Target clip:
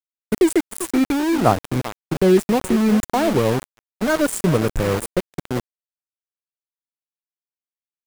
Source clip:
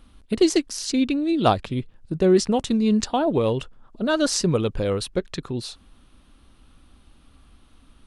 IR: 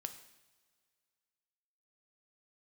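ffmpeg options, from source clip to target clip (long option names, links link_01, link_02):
-filter_complex "[0:a]aexciter=amount=2.8:drive=3.6:freq=8900,asplit=2[link_01][link_02];[link_02]acompressor=threshold=-35dB:ratio=5,volume=-1dB[link_03];[link_01][link_03]amix=inputs=2:normalize=0,afftfilt=real='re*(1-between(b*sr/4096,2500,6900))':imag='im*(1-between(b*sr/4096,2500,6900))':win_size=4096:overlap=0.75,acrossover=split=150[link_04][link_05];[link_04]dynaudnorm=framelen=120:gausssize=11:maxgain=3dB[link_06];[link_05]asplit=2[link_07][link_08];[link_08]adelay=392,lowpass=frequency=1200:poles=1,volume=-11dB,asplit=2[link_09][link_10];[link_10]adelay=392,lowpass=frequency=1200:poles=1,volume=0.26,asplit=2[link_11][link_12];[link_12]adelay=392,lowpass=frequency=1200:poles=1,volume=0.26[link_13];[link_07][link_09][link_11][link_13]amix=inputs=4:normalize=0[link_14];[link_06][link_14]amix=inputs=2:normalize=0,aeval=exprs='val(0)*gte(abs(val(0)),0.0794)':channel_layout=same,agate=range=-19dB:threshold=-32dB:ratio=16:detection=peak,volume=1.5dB"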